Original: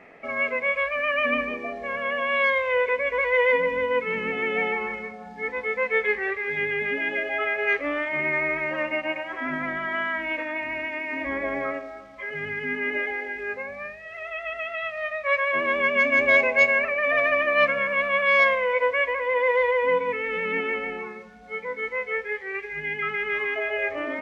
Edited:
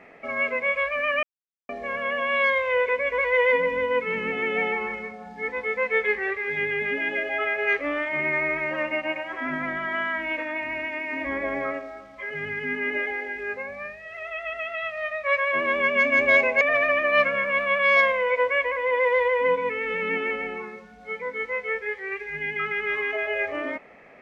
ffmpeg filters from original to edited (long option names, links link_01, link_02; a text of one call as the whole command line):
ffmpeg -i in.wav -filter_complex "[0:a]asplit=4[link_01][link_02][link_03][link_04];[link_01]atrim=end=1.23,asetpts=PTS-STARTPTS,afade=type=out:start_time=1.226:duration=0.004:curve=hsin[link_05];[link_02]atrim=start=1.23:end=1.69,asetpts=PTS-STARTPTS,volume=0[link_06];[link_03]atrim=start=1.69:end=16.612,asetpts=PTS-STARTPTS,afade=type=in:duration=0.004:curve=hsin[link_07];[link_04]atrim=start=17.038[link_08];[link_05][link_06][link_07]concat=n=3:v=0:a=1[link_09];[link_09][link_08]acrossfade=duration=0.004:curve1=hsin:curve2=hsin" out.wav